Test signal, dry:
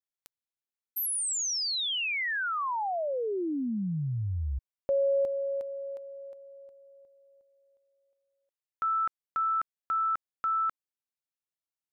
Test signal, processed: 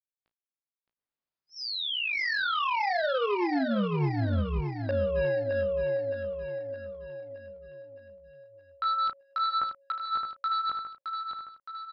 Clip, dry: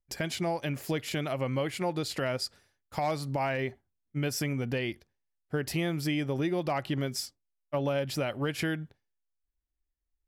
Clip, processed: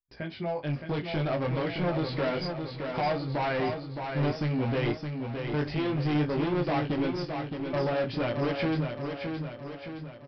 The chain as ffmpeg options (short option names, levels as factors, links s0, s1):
-filter_complex "[0:a]lowpass=f=1700:p=1,agate=range=0.224:threshold=0.00224:ratio=16:release=36:detection=peak,dynaudnorm=f=170:g=9:m=2.66,flanger=delay=17:depth=3.6:speed=0.6,aresample=11025,asoftclip=type=hard:threshold=0.0501,aresample=44100,asplit=2[s0][s1];[s1]adelay=34,volume=0.237[s2];[s0][s2]amix=inputs=2:normalize=0,aecho=1:1:617|1234|1851|2468|3085|3702|4319:0.501|0.266|0.141|0.0746|0.0395|0.021|0.0111"